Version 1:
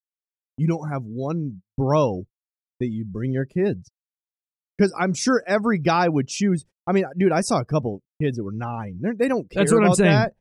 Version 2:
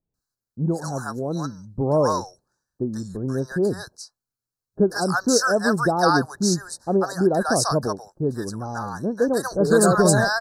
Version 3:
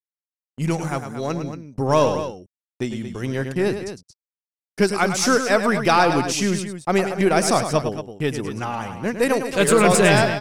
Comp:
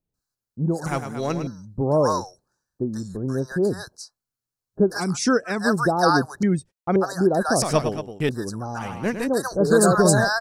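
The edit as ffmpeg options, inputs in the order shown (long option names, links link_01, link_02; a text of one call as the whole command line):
ffmpeg -i take0.wav -i take1.wav -i take2.wav -filter_complex "[2:a]asplit=3[link_01][link_02][link_03];[0:a]asplit=2[link_04][link_05];[1:a]asplit=6[link_06][link_07][link_08][link_09][link_10][link_11];[link_06]atrim=end=0.862[link_12];[link_01]atrim=start=0.858:end=1.472[link_13];[link_07]atrim=start=1.468:end=5.18[link_14];[link_04]atrim=start=4.94:end=5.68[link_15];[link_08]atrim=start=5.44:end=6.432[link_16];[link_05]atrim=start=6.428:end=6.962[link_17];[link_09]atrim=start=6.958:end=7.622[link_18];[link_02]atrim=start=7.618:end=8.292[link_19];[link_10]atrim=start=8.288:end=8.85[link_20];[link_03]atrim=start=8.75:end=9.28[link_21];[link_11]atrim=start=9.18[link_22];[link_12][link_13]acrossfade=duration=0.004:curve1=hsin:curve2=hsin[link_23];[link_23][link_14]acrossfade=duration=0.004:curve1=hsin:curve2=hsin[link_24];[link_24][link_15]acrossfade=duration=0.24:curve1=tri:curve2=tri[link_25];[link_25][link_16]acrossfade=duration=0.24:curve1=tri:curve2=tri[link_26];[link_26][link_17]acrossfade=duration=0.004:curve1=hsin:curve2=hsin[link_27];[link_27][link_18]acrossfade=duration=0.004:curve1=hsin:curve2=hsin[link_28];[link_28][link_19]acrossfade=duration=0.004:curve1=hsin:curve2=hsin[link_29];[link_29][link_20]acrossfade=duration=0.004:curve1=hsin:curve2=hsin[link_30];[link_30][link_21]acrossfade=duration=0.1:curve1=tri:curve2=tri[link_31];[link_31][link_22]acrossfade=duration=0.1:curve1=tri:curve2=tri" out.wav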